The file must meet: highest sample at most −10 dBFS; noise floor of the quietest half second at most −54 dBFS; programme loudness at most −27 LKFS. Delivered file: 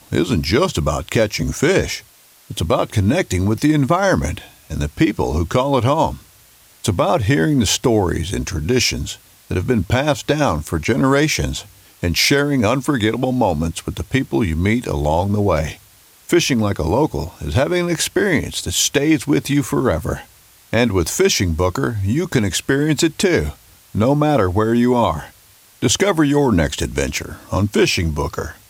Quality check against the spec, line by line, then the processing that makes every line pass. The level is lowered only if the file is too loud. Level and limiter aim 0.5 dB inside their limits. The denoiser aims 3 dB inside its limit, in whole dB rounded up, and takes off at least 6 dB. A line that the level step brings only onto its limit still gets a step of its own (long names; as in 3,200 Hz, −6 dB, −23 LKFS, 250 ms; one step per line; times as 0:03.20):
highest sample −4.0 dBFS: out of spec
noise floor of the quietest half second −49 dBFS: out of spec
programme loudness −18.0 LKFS: out of spec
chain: level −9.5 dB